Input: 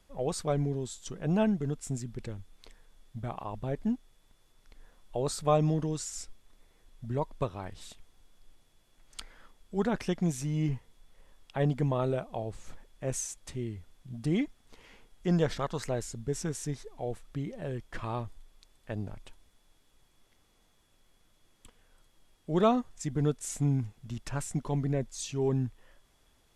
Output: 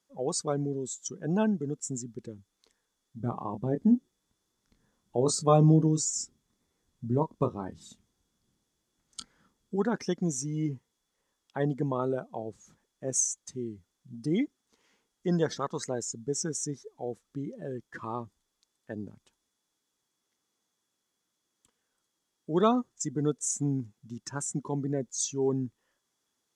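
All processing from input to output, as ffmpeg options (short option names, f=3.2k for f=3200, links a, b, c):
-filter_complex "[0:a]asettb=1/sr,asplit=3[a][b][c];[a]atrim=end=3.204[d];[b]atrim=start=3.2:end=9.76,asetpts=PTS-STARTPTS,afade=t=in:d=0.004:c=qsin,afade=t=out:st=6.556:d=0.004:c=qsin,lowshelf=f=350:g=9.5,asplit=2[e][f];[f]adelay=25,volume=-8dB[g];[e][g]amix=inputs=2:normalize=0,atrim=end_sample=289296[h];[c]atrim=start=9.756[i];[d][h]acrossfade=d=0.004:c1=hsin:c2=qsin[j];[j][i]acrossfade=d=0.004:c1=qsin:c2=hsin,equalizer=f=630:t=o:w=0.67:g=-6,equalizer=f=2.5k:t=o:w=0.67:g=-5,equalizer=f=6.3k:t=o:w=0.67:g=7,afftdn=nr=14:nf=-41,highpass=210,volume=3.5dB"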